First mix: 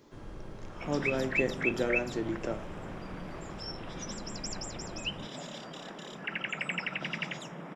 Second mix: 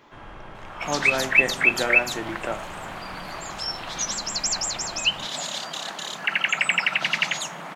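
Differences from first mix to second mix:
second sound: remove Savitzky-Golay smoothing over 25 samples
master: add flat-topped bell 1,500 Hz +12 dB 2.7 octaves

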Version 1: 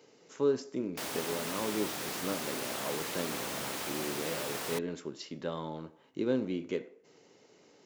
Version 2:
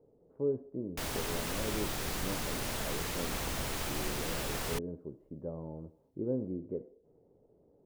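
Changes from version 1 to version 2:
speech: add transistor ladder low-pass 760 Hz, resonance 30%
master: remove high-pass filter 220 Hz 12 dB per octave

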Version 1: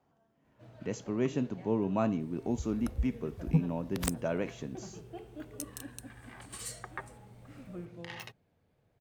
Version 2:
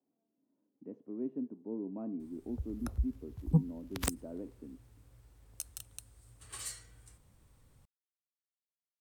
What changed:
speech: add four-pole ladder band-pass 310 Hz, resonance 55%
first sound: muted

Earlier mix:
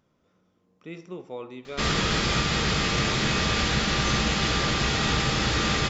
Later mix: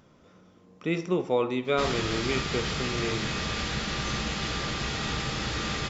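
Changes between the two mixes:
speech +11.5 dB
background −6.5 dB

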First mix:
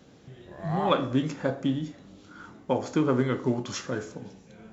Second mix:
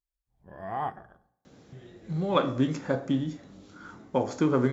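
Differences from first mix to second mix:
speech: entry +1.45 s
master: add parametric band 2,900 Hz −3.5 dB 0.54 octaves

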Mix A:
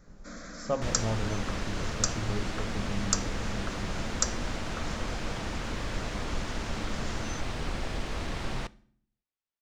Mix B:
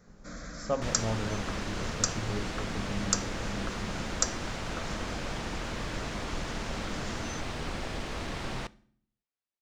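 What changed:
first sound: remove Butterworth high-pass 180 Hz 48 dB per octave
master: add low-shelf EQ 71 Hz −6.5 dB

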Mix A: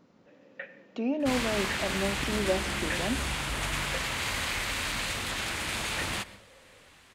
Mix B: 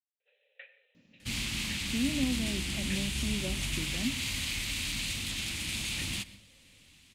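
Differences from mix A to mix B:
speech: entry +0.95 s
master: add flat-topped bell 830 Hz −15.5 dB 2.5 octaves

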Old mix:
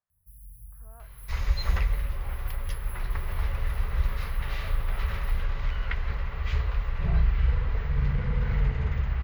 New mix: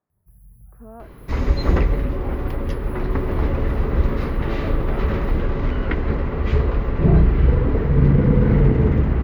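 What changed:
first sound −7.0 dB
master: remove guitar amp tone stack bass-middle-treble 10-0-10

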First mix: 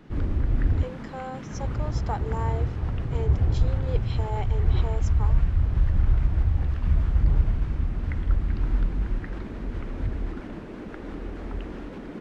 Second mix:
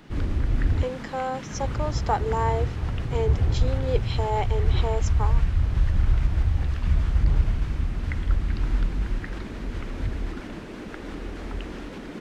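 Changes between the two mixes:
speech +7.5 dB
background: add high-shelf EQ 2,300 Hz +11.5 dB

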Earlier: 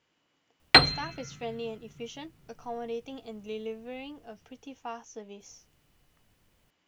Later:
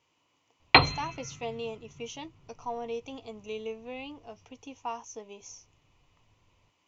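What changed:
background: add low-pass filter 3,600 Hz 24 dB per octave
master: add thirty-one-band graphic EQ 100 Hz +8 dB, 200 Hz −6 dB, 1,000 Hz +9 dB, 1,600 Hz −10 dB, 2,500 Hz +5 dB, 6,300 Hz +6 dB

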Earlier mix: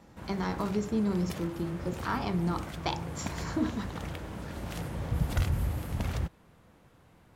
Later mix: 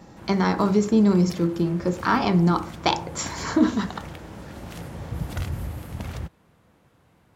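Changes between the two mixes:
speech +11.0 dB
background: add high-pass filter 55 Hz

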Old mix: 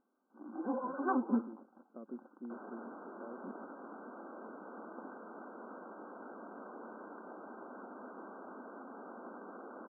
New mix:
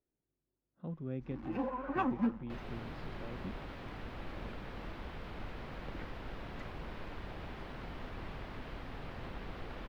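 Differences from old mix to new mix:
first sound: entry +0.90 s
master: remove linear-phase brick-wall band-pass 200–1,600 Hz

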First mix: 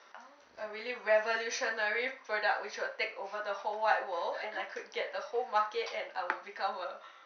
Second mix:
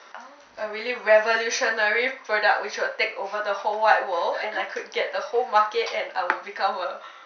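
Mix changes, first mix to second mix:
speech +10.5 dB
background: add spectral tilt −2.5 dB per octave

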